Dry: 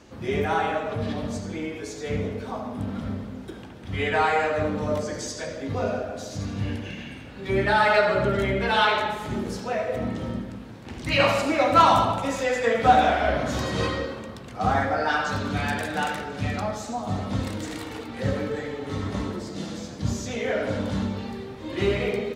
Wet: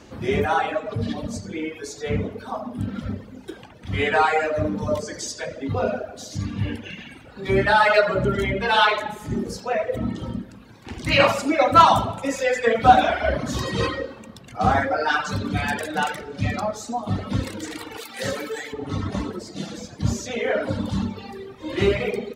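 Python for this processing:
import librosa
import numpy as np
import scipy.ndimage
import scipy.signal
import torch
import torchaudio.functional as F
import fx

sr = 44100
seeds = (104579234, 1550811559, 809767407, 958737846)

y = fx.riaa(x, sr, side='recording', at=(17.97, 18.72), fade=0.02)
y = fx.dereverb_blind(y, sr, rt60_s=1.8)
y = F.gain(torch.from_numpy(y), 4.5).numpy()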